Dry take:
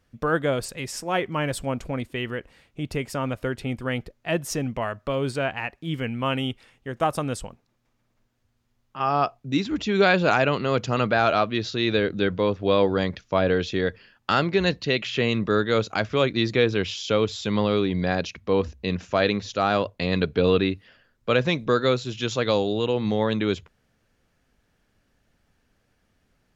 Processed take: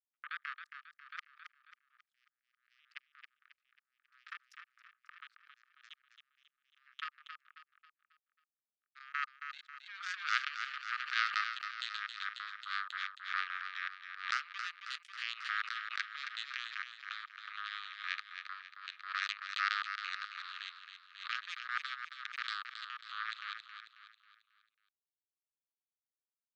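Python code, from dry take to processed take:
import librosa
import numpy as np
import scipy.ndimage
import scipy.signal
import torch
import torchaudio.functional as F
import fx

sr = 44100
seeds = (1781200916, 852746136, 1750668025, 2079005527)

y = scipy.signal.sosfilt(scipy.signal.butter(2, 3200.0, 'lowpass', fs=sr, output='sos'), x)
y = fx.tilt_eq(y, sr, slope=-2.5)
y = fx.level_steps(y, sr, step_db=20)
y = fx.power_curve(y, sr, exponent=3.0)
y = scipy.signal.sosfilt(scipy.signal.cheby1(6, 3, 1200.0, 'highpass', fs=sr, output='sos'), y)
y = fx.echo_feedback(y, sr, ms=271, feedback_pct=43, wet_db=-8)
y = fx.pre_swell(y, sr, db_per_s=110.0)
y = y * 10.0 ** (2.0 / 20.0)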